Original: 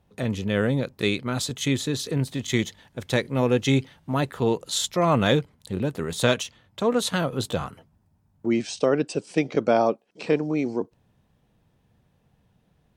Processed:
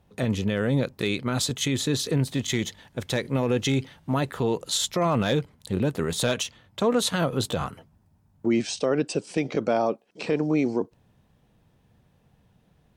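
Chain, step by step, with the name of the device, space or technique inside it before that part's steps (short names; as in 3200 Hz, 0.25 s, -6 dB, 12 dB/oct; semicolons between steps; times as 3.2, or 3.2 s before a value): clipper into limiter (hard clip -10 dBFS, distortion -26 dB; limiter -16.5 dBFS, peak gain reduction 6.5 dB); gain +2.5 dB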